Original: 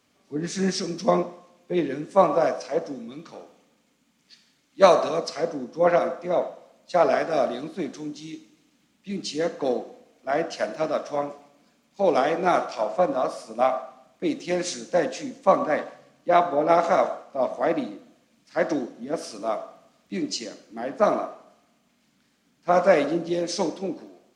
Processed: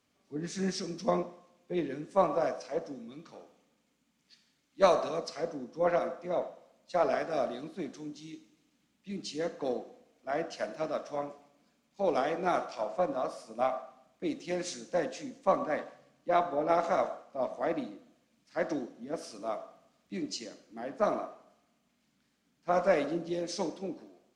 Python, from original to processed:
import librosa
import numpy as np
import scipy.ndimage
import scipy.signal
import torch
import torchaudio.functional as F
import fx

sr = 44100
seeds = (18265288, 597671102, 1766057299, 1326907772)

y = fx.low_shelf(x, sr, hz=84.0, db=6.0)
y = fx.cheby_harmonics(y, sr, harmonics=(4,), levels_db=(-31,), full_scale_db=-1.0)
y = y * librosa.db_to_amplitude(-8.5)